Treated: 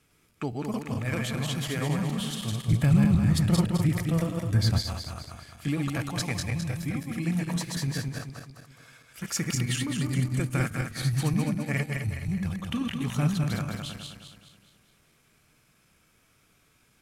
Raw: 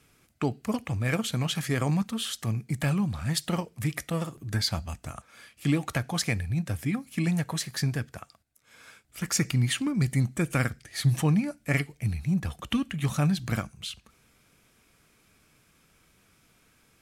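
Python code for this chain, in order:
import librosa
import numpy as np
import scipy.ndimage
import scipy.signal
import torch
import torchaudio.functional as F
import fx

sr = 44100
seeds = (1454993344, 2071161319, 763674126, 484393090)

y = fx.reverse_delay_fb(x, sr, ms=105, feedback_pct=67, wet_db=-2)
y = fx.low_shelf(y, sr, hz=310.0, db=11.0, at=(2.68, 4.79))
y = y * 10.0 ** (-4.5 / 20.0)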